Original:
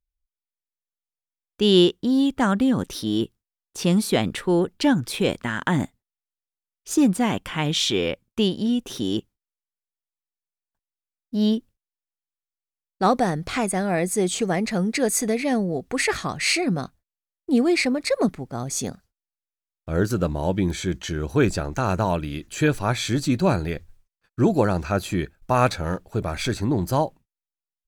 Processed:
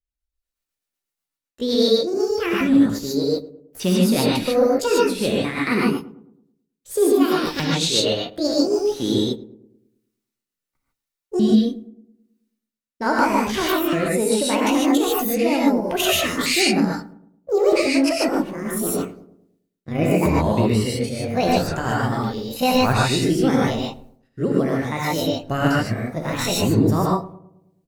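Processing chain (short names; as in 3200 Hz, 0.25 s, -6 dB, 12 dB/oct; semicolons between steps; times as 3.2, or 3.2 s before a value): repeated pitch sweeps +10 st, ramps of 1.266 s; rotary speaker horn 8 Hz, later 0.85 Hz, at 8.36; on a send: darkening echo 0.108 s, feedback 47%, low-pass 980 Hz, level -16 dB; on the sum: non-linear reverb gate 0.17 s rising, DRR -4 dB; AGC gain up to 16 dB; gain -5 dB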